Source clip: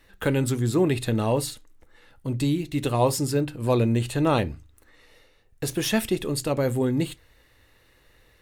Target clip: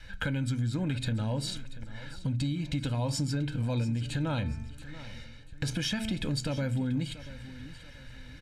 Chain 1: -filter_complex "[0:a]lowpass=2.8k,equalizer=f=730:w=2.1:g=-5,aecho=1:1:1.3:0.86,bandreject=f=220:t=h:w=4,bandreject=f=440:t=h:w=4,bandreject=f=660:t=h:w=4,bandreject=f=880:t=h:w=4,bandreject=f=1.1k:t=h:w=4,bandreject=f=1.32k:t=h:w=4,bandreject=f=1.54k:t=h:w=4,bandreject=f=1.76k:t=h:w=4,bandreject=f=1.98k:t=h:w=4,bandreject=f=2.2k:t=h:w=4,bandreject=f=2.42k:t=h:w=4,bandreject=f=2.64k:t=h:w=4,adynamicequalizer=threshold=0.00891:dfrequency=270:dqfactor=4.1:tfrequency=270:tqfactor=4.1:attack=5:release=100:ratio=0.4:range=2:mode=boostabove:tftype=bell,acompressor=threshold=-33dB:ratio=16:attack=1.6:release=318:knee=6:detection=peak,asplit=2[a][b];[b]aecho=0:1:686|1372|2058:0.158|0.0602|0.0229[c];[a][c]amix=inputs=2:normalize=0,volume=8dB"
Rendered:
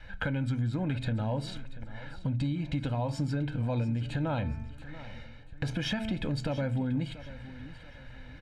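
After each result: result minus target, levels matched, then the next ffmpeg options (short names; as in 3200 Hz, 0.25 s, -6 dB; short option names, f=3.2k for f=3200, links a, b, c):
8000 Hz band -11.0 dB; 1000 Hz band +3.0 dB
-filter_complex "[0:a]lowpass=5.7k,equalizer=f=730:w=2.1:g=-5,aecho=1:1:1.3:0.86,bandreject=f=220:t=h:w=4,bandreject=f=440:t=h:w=4,bandreject=f=660:t=h:w=4,bandreject=f=880:t=h:w=4,bandreject=f=1.1k:t=h:w=4,bandreject=f=1.32k:t=h:w=4,bandreject=f=1.54k:t=h:w=4,bandreject=f=1.76k:t=h:w=4,bandreject=f=1.98k:t=h:w=4,bandreject=f=2.2k:t=h:w=4,bandreject=f=2.42k:t=h:w=4,bandreject=f=2.64k:t=h:w=4,adynamicequalizer=threshold=0.00891:dfrequency=270:dqfactor=4.1:tfrequency=270:tqfactor=4.1:attack=5:release=100:ratio=0.4:range=2:mode=boostabove:tftype=bell,acompressor=threshold=-33dB:ratio=16:attack=1.6:release=318:knee=6:detection=peak,asplit=2[a][b];[b]aecho=0:1:686|1372|2058:0.158|0.0602|0.0229[c];[a][c]amix=inputs=2:normalize=0,volume=8dB"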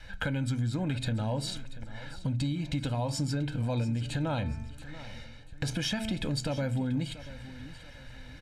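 1000 Hz band +3.0 dB
-filter_complex "[0:a]lowpass=5.7k,equalizer=f=730:w=2.1:g=-12.5,aecho=1:1:1.3:0.86,bandreject=f=220:t=h:w=4,bandreject=f=440:t=h:w=4,bandreject=f=660:t=h:w=4,bandreject=f=880:t=h:w=4,bandreject=f=1.1k:t=h:w=4,bandreject=f=1.32k:t=h:w=4,bandreject=f=1.54k:t=h:w=4,bandreject=f=1.76k:t=h:w=4,bandreject=f=1.98k:t=h:w=4,bandreject=f=2.2k:t=h:w=4,bandreject=f=2.42k:t=h:w=4,bandreject=f=2.64k:t=h:w=4,adynamicequalizer=threshold=0.00891:dfrequency=270:dqfactor=4.1:tfrequency=270:tqfactor=4.1:attack=5:release=100:ratio=0.4:range=2:mode=boostabove:tftype=bell,acompressor=threshold=-33dB:ratio=16:attack=1.6:release=318:knee=6:detection=peak,asplit=2[a][b];[b]aecho=0:1:686|1372|2058:0.158|0.0602|0.0229[c];[a][c]amix=inputs=2:normalize=0,volume=8dB"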